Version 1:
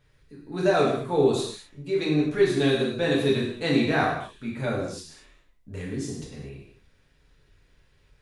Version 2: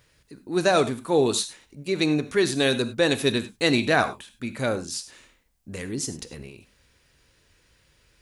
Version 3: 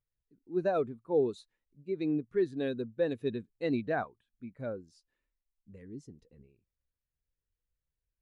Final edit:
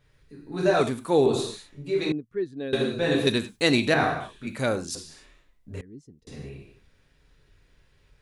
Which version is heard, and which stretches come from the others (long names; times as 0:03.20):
1
0:00.81–0:01.26: punch in from 2
0:02.12–0:02.73: punch in from 3
0:03.27–0:03.94: punch in from 2
0:04.47–0:04.95: punch in from 2
0:05.81–0:06.27: punch in from 3